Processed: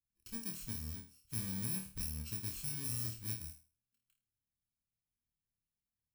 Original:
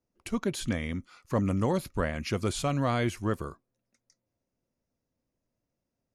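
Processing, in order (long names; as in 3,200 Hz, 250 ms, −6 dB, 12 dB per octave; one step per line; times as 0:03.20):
samples in bit-reversed order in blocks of 64 samples
guitar amp tone stack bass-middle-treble 6-0-2
on a send: flutter between parallel walls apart 4.5 metres, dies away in 0.35 s
on the sum: level +1.5 dB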